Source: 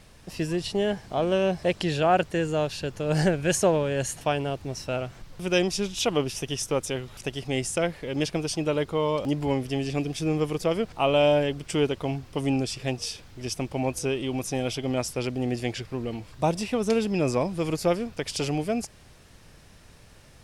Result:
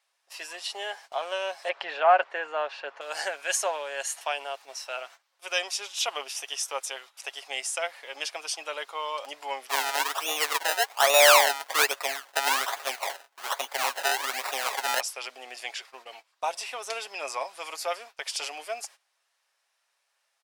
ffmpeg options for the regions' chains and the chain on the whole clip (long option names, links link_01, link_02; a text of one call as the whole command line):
ffmpeg -i in.wav -filter_complex "[0:a]asettb=1/sr,asplit=3[link_01][link_02][link_03];[link_01]atrim=end=1.694[link_04];[link_02]atrim=start=1.69:end=3.01,asetpts=PTS-STARTPTS,afade=type=in:duration=0.004:curve=qsin,afade=type=out:start_time=1.316:duration=0.004:curve=qsin,lowpass=1800,acontrast=46[link_05];[link_03]atrim=start=3.006[link_06];[link_04][link_05]acrossfade=duration=0.004:curve1=hsin:curve2=qsin[link_07];[link_07][link_06]acrossfade=duration=0.004:curve1=qsin:curve2=hsin,asettb=1/sr,asplit=3[link_08][link_09][link_10];[link_08]atrim=end=9.694[link_11];[link_09]atrim=start=9.69:end=15,asetpts=PTS-STARTPTS,afade=type=in:duration=0.004:curve=qsin,afade=type=out:start_time=5.306:duration=0.004:curve=qsin,aecho=1:1:6.8:0.41,atrim=end_sample=234171,acrusher=samples=27:mix=1:aa=0.000001:lfo=1:lforange=27:lforate=1.2,acontrast=50[link_12];[link_10]atrim=start=14.996[link_13];[link_11][link_12]acrossfade=duration=0.004:curve1=hsin:curve2=qsin[link_14];[link_14][link_13]acrossfade=duration=0.004:curve1=qsin:curve2=hsin,highpass=frequency=720:width=0.5412,highpass=frequency=720:width=1.3066,agate=range=-18dB:threshold=-47dB:ratio=16:detection=peak,aecho=1:1:7.3:0.35" out.wav